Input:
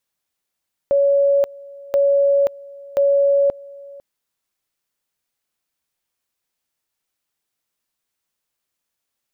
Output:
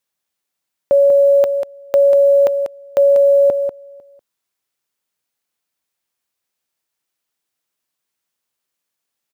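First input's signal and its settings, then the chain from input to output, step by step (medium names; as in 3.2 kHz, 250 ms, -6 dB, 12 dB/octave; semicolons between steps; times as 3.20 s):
two-level tone 561 Hz -12 dBFS, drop 23 dB, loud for 0.53 s, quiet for 0.50 s, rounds 3
high-pass 110 Hz 6 dB/octave; in parallel at -2.5 dB: small samples zeroed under -33 dBFS; on the sum: delay 192 ms -7.5 dB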